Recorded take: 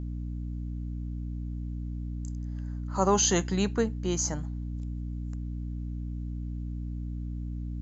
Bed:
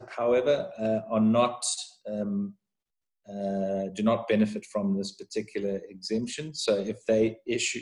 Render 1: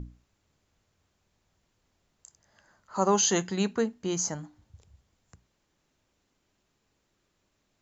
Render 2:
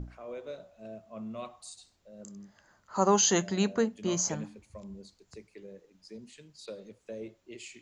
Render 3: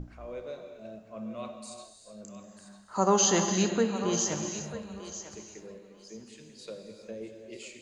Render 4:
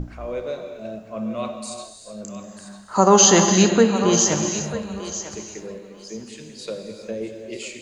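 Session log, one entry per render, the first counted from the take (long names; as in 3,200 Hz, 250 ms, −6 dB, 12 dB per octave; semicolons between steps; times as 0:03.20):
mains-hum notches 60/120/180/240/300 Hz
mix in bed −17.5 dB
feedback echo with a high-pass in the loop 945 ms, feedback 19%, high-pass 530 Hz, level −11 dB; reverb whose tail is shaped and stops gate 420 ms flat, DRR 5 dB
level +11 dB; brickwall limiter −2 dBFS, peak gain reduction 3 dB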